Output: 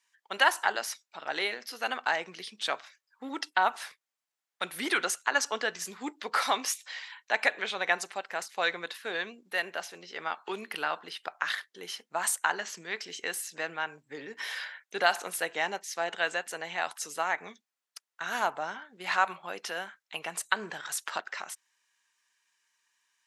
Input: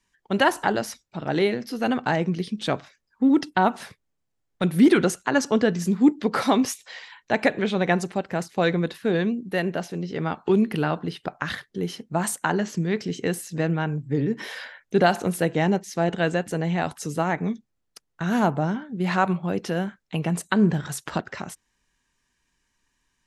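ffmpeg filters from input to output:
ffmpeg -i in.wav -af "highpass=1000" out.wav

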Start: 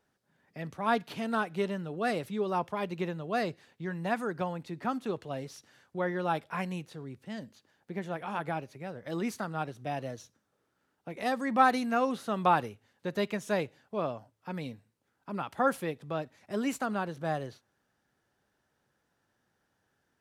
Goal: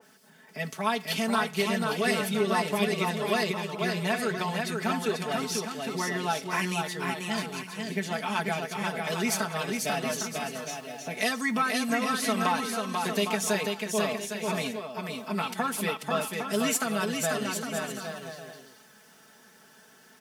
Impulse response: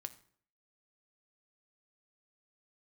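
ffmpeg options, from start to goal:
-filter_complex "[0:a]acompressor=threshold=-31dB:ratio=6,highpass=140,bandreject=frequency=3900:width=18,asplit=2[link_01][link_02];[1:a]atrim=start_sample=2205[link_03];[link_02][link_03]afir=irnorm=-1:irlink=0,volume=2.5dB[link_04];[link_01][link_04]amix=inputs=2:normalize=0,acompressor=mode=upward:threshold=-48dB:ratio=2.5,highshelf=frequency=2500:gain=8.5,aecho=1:1:4.6:0.95,aecho=1:1:490|808.5|1016|1150|1238:0.631|0.398|0.251|0.158|0.1,adynamicequalizer=threshold=0.00891:dfrequency=1800:dqfactor=0.7:tfrequency=1800:tqfactor=0.7:attack=5:release=100:ratio=0.375:range=3:mode=boostabove:tftype=highshelf,volume=-3.5dB"

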